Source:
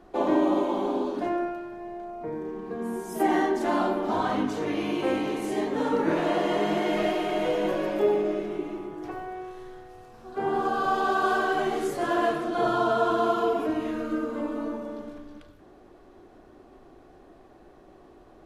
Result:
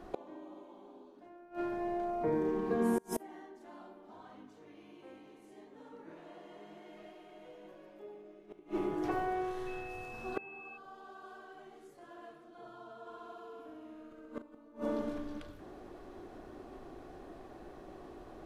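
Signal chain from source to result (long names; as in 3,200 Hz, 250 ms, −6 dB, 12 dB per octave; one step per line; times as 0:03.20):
gate with flip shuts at −23 dBFS, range −29 dB
0:09.66–0:10.76: steady tone 2,600 Hz −50 dBFS
0:13.00–0:14.42: flutter between parallel walls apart 11 metres, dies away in 1.4 s
level +2 dB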